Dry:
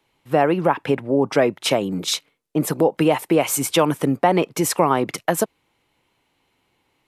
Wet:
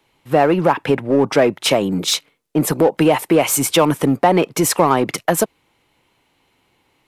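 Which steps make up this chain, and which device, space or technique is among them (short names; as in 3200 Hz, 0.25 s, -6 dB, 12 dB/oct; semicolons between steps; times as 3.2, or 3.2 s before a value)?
parallel distortion (in parallel at -5 dB: hard clip -20.5 dBFS, distortion -5 dB); on the sum: gain +1.5 dB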